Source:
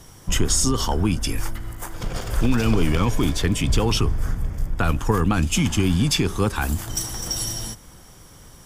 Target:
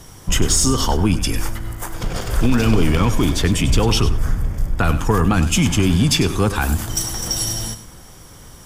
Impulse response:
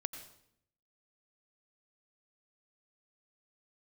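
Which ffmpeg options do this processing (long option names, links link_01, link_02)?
-filter_complex "[0:a]acontrast=65,asplit=2[link_01][link_02];[1:a]atrim=start_sample=2205,afade=type=out:start_time=0.14:duration=0.01,atrim=end_sample=6615,adelay=99[link_03];[link_02][link_03]afir=irnorm=-1:irlink=0,volume=-11dB[link_04];[link_01][link_04]amix=inputs=2:normalize=0,volume=-2dB"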